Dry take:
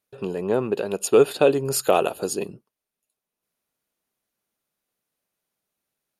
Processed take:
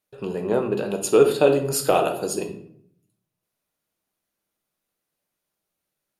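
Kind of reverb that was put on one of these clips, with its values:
rectangular room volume 100 cubic metres, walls mixed, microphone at 0.53 metres
level −1 dB

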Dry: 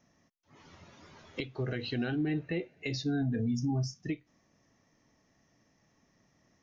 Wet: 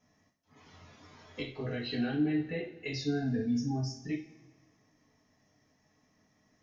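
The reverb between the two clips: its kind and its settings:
coupled-rooms reverb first 0.36 s, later 1.6 s, from −19 dB, DRR −5 dB
level −6.5 dB

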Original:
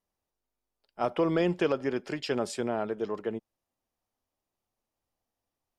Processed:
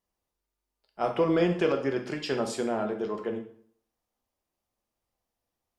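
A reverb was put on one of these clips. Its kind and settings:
dense smooth reverb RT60 0.55 s, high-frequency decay 0.85×, DRR 3.5 dB

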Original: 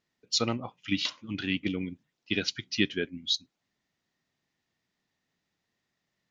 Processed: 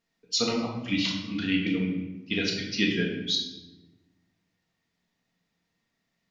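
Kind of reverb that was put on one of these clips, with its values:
rectangular room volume 500 cubic metres, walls mixed, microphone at 1.7 metres
level −1.5 dB

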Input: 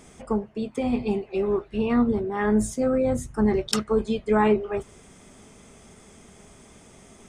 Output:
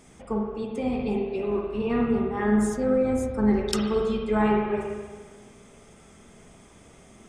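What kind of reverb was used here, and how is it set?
spring reverb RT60 1.5 s, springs 43/52/58 ms, chirp 65 ms, DRR 0 dB
level −4 dB

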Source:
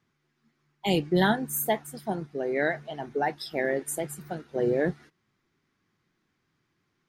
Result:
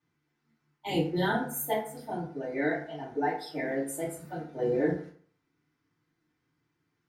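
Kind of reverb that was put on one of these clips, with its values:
feedback delay network reverb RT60 0.52 s, low-frequency decay 1×, high-frequency decay 0.6×, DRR −10 dB
level −14 dB

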